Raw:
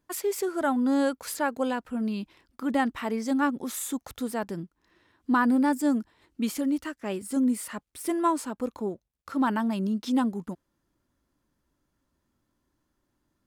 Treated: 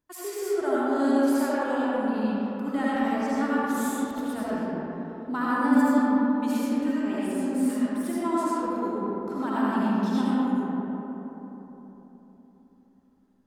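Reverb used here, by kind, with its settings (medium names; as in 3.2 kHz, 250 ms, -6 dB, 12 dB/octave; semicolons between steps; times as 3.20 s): algorithmic reverb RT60 3.9 s, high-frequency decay 0.35×, pre-delay 40 ms, DRR -9.5 dB; trim -8.5 dB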